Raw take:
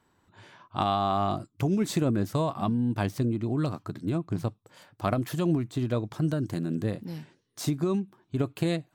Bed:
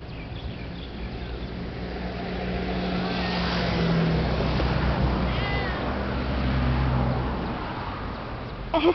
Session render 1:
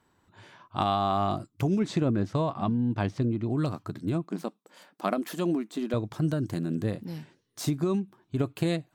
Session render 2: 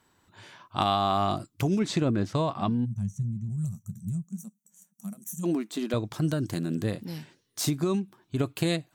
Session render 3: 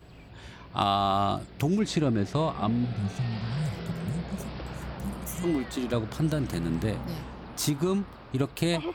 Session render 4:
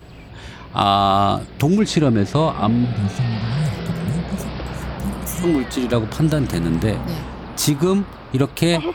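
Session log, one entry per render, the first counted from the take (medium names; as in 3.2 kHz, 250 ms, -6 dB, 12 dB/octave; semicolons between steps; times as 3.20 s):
1.79–3.50 s: distance through air 100 m; 4.24–5.94 s: brick-wall FIR high-pass 170 Hz
2.85–5.44 s: time-frequency box 220–5700 Hz -29 dB; treble shelf 2.2 kHz +7.5 dB
add bed -13.5 dB
trim +9.5 dB; peak limiter -3 dBFS, peak gain reduction 2 dB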